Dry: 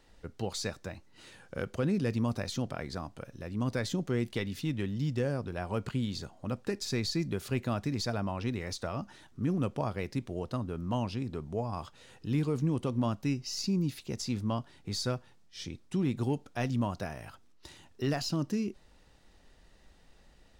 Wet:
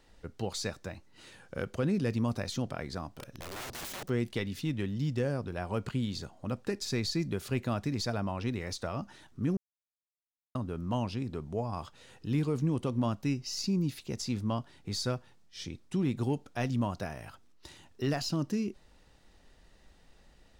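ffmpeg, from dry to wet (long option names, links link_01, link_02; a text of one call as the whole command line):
ffmpeg -i in.wav -filter_complex "[0:a]asplit=3[link_01][link_02][link_03];[link_01]afade=type=out:start_time=3.11:duration=0.02[link_04];[link_02]aeval=exprs='(mod(63.1*val(0)+1,2)-1)/63.1':channel_layout=same,afade=type=in:start_time=3.11:duration=0.02,afade=type=out:start_time=4.08:duration=0.02[link_05];[link_03]afade=type=in:start_time=4.08:duration=0.02[link_06];[link_04][link_05][link_06]amix=inputs=3:normalize=0,asplit=3[link_07][link_08][link_09];[link_07]atrim=end=9.57,asetpts=PTS-STARTPTS,afade=type=out:start_time=9.566:duration=0.004:curve=hsin[link_10];[link_08]atrim=start=9.57:end=10.55,asetpts=PTS-STARTPTS,volume=0[link_11];[link_09]atrim=start=10.55,asetpts=PTS-STARTPTS,afade=type=in:duration=0.004:curve=hsin[link_12];[link_10][link_11][link_12]concat=n=3:v=0:a=1" out.wav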